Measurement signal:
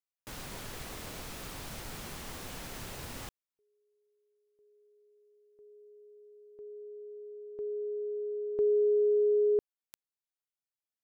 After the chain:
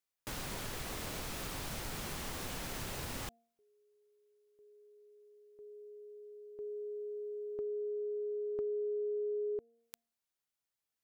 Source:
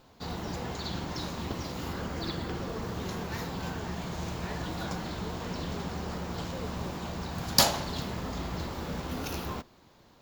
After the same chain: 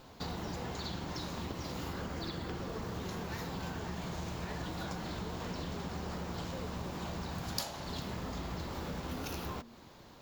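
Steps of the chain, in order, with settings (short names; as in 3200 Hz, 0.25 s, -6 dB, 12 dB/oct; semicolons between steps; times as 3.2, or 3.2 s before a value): de-hum 232.1 Hz, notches 3; compressor 5:1, threshold -41 dBFS; gain +4 dB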